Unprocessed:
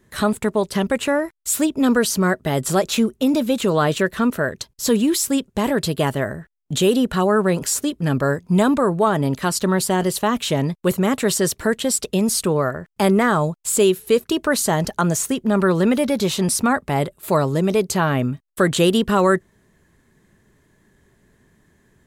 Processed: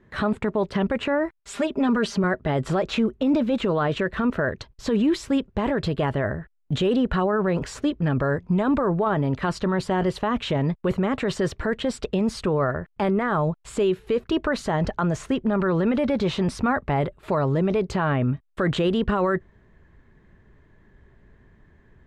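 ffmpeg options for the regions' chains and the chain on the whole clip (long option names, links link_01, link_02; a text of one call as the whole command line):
ffmpeg -i in.wav -filter_complex "[0:a]asettb=1/sr,asplit=3[link_01][link_02][link_03];[link_01]atrim=end=1.394[link_04];[link_02]atrim=start=1.39:end=2.24,asetpts=PTS-STARTPTS,afade=type=in:duration=0.004:curve=qsin,afade=type=out:start_time=0.846:duration=0.004:curve=qsin,lowpass=11000,lowshelf=frequency=89:gain=-10,aecho=1:1:5:0.76,atrim=end_sample=37485[link_05];[link_03]atrim=start=2.236[link_06];[link_04][link_05]acrossfade=duration=0.004:curve1=hsin:curve2=qsin[link_07];[link_07][link_06]acrossfade=duration=0.004:curve1=qsin:curve2=hsin,lowpass=2400,asubboost=boost=2.5:cutoff=98,alimiter=limit=-16dB:level=0:latency=1:release=20,volume=1.5dB" out.wav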